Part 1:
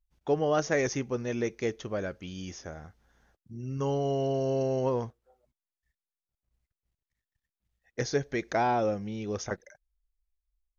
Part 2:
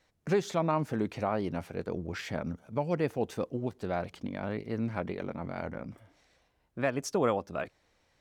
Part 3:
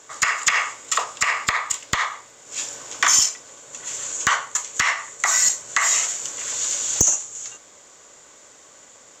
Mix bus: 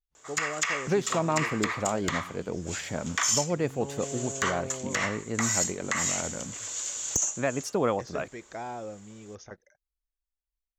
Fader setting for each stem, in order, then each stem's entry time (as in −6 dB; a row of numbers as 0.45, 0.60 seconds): −11.0, +1.5, −9.5 decibels; 0.00, 0.60, 0.15 seconds